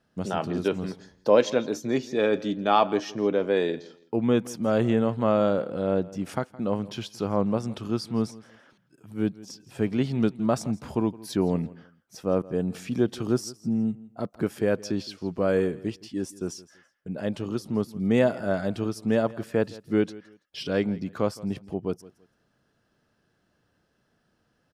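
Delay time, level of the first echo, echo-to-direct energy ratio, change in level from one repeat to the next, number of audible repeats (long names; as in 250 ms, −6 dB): 166 ms, −20.0 dB, −19.5 dB, −12.0 dB, 2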